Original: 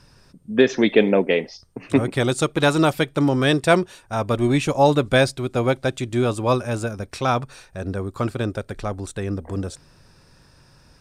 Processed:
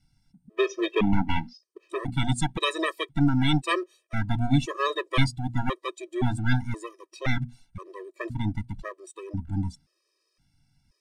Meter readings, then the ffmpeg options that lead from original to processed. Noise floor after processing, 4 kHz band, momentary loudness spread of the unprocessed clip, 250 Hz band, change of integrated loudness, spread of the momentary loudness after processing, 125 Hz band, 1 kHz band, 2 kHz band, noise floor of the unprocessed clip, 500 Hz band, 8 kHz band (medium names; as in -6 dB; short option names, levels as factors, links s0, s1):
-76 dBFS, -4.5 dB, 12 LU, -6.0 dB, -7.0 dB, 14 LU, -3.0 dB, -7.0 dB, -6.5 dB, -54 dBFS, -12.5 dB, -8.0 dB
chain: -filter_complex "[0:a]bandreject=f=60:t=h:w=6,bandreject=f=120:t=h:w=6,bandreject=f=180:t=h:w=6,bandreject=f=240:t=h:w=6,acrossover=split=360|2200[s0][s1][s2];[s1]aeval=exprs='abs(val(0))':c=same[s3];[s0][s3][s2]amix=inputs=3:normalize=0,afftdn=nr=13:nf=-32,afftfilt=real='re*gt(sin(2*PI*0.96*pts/sr)*(1-2*mod(floor(b*sr/1024/330),2)),0)':imag='im*gt(sin(2*PI*0.96*pts/sr)*(1-2*mod(floor(b*sr/1024/330),2)),0)':win_size=1024:overlap=0.75"